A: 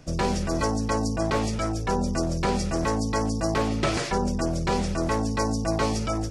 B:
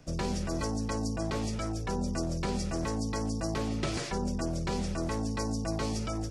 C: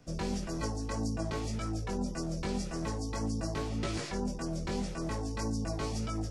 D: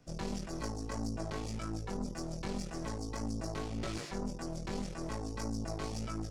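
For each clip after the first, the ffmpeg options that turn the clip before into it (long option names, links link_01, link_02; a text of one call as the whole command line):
ffmpeg -i in.wav -filter_complex "[0:a]acrossover=split=390|3000[link_01][link_02][link_03];[link_02]acompressor=threshold=-32dB:ratio=3[link_04];[link_01][link_04][link_03]amix=inputs=3:normalize=0,volume=-5.5dB" out.wav
ffmpeg -i in.wav -af "flanger=delay=17.5:depth=3.5:speed=1.8" out.wav
ffmpeg -i in.wav -af "aeval=exprs='(tanh(31.6*val(0)+0.75)-tanh(0.75))/31.6':channel_layout=same" out.wav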